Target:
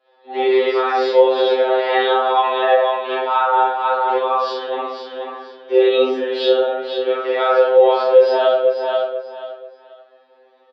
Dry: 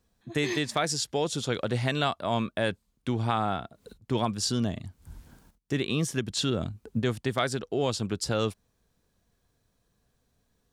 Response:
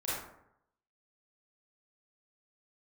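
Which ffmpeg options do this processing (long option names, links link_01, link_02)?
-filter_complex "[0:a]flanger=delay=4.3:depth=5.8:regen=69:speed=0.46:shape=triangular,aecho=1:1:486|972|1458:0.2|0.0499|0.0125,acompressor=threshold=-37dB:ratio=6,equalizer=frequency=1200:width=0.34:gain=-6.5,highpass=frequency=320:width_type=q:width=0.5412,highpass=frequency=320:width_type=q:width=1.307,lowpass=frequency=3200:width_type=q:width=0.5176,lowpass=frequency=3200:width_type=q:width=0.7071,lowpass=frequency=3200:width_type=q:width=1.932,afreqshift=100,asplit=2[link_01][link_02];[link_02]adelay=23,volume=-2dB[link_03];[link_01][link_03]amix=inputs=2:normalize=0[link_04];[1:a]atrim=start_sample=2205,asetrate=42336,aresample=44100[link_05];[link_04][link_05]afir=irnorm=-1:irlink=0,alimiter=level_in=32dB:limit=-1dB:release=50:level=0:latency=1,afftfilt=real='re*2.45*eq(mod(b,6),0)':imag='im*2.45*eq(mod(b,6),0)':win_size=2048:overlap=0.75,volume=-4.5dB"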